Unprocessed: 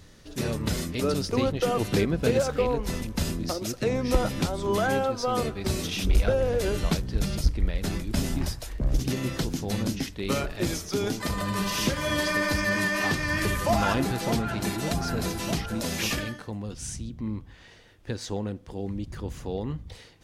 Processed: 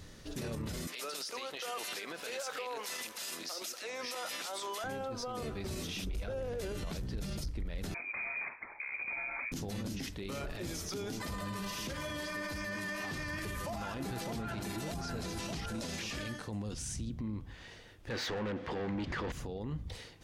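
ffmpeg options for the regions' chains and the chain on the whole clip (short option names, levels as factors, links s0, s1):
-filter_complex "[0:a]asettb=1/sr,asplit=3[s0][s1][s2];[s0]atrim=end=0.874[s3];[s1]atrim=start=0.87:end=4.84,asetpts=PTS-STARTPTS,afade=t=in:d=0.004:c=qsin,afade=t=out:st=3.966:d=0.004:c=qsin,highpass=490,tiltshelf=f=730:g=-7.5,acompressor=threshold=0.0251:ratio=6:attack=3.2:release=140:knee=1:detection=peak[s4];[s2]atrim=start=4.836[s5];[s3][s4]acrossfade=d=0.004:c1=hsin:c2=qsin[s6];[s6][s5]acrossfade=d=0.004:c1=qsin:c2=hsin,asettb=1/sr,asplit=3[s7][s8][s9];[s7]atrim=end=7.944[s10];[s8]atrim=start=7.94:end=9.52,asetpts=PTS-STARTPTS,afade=t=in:d=0.004:c=qsin,afade=t=out:st=1.576:d=0.004:c=qsin,highpass=f=260:w=0.5412,highpass=f=260:w=1.3066,lowpass=f=2300:t=q:w=0.5098,lowpass=f=2300:t=q:w=0.6013,lowpass=f=2300:t=q:w=0.9,lowpass=f=2300:t=q:w=2.563,afreqshift=-2700[s11];[s9]atrim=start=9.516[s12];[s10][s11]acrossfade=d=0.004:c1=hsin:c2=qsin[s13];[s13][s12]acrossfade=d=0.004:c1=qsin:c2=hsin,asettb=1/sr,asplit=3[s14][s15][s16];[s14]atrim=end=14.984[s17];[s15]atrim=start=14.98:end=16.79,asetpts=PTS-STARTPTS,afade=t=in:d=0.004:c=qsin,afade=t=out:st=1.806:d=0.004:c=qsin,lowpass=9800,acrossover=split=6400[s18][s19];[s19]acompressor=threshold=0.00282:ratio=4:attack=1:release=60[s20];[s18][s20]amix=inputs=2:normalize=0,highshelf=f=6700:g=10[s21];[s16]atrim=start=16.786[s22];[s17][s21]acrossfade=d=0.004:c1=hsin:c2=qsin[s23];[s23][s22]acrossfade=d=0.004:c1=qsin:c2=hsin,asettb=1/sr,asplit=3[s24][s25][s26];[s24]atrim=end=18.104[s27];[s25]atrim=start=18.1:end=19.32,asetpts=PTS-STARTPTS,afade=t=in:d=0.004:c=qsin,afade=t=out:st=1.216:d=0.004:c=qsin,lowpass=4300,asplit=2[s28][s29];[s29]highpass=f=720:p=1,volume=25.1,asoftclip=type=tanh:threshold=0.126[s30];[s28][s30]amix=inputs=2:normalize=0,lowpass=f=3300:p=1,volume=0.501,equalizer=f=1900:w=2.4:g=5[s31];[s26]atrim=start=19.316[s32];[s27][s31]acrossfade=d=0.004:c1=hsin:c2=qsin[s33];[s33][s32]acrossfade=d=0.004:c1=qsin:c2=hsin,acompressor=threshold=0.0251:ratio=2.5,alimiter=level_in=2.24:limit=0.0631:level=0:latency=1:release=23,volume=0.447"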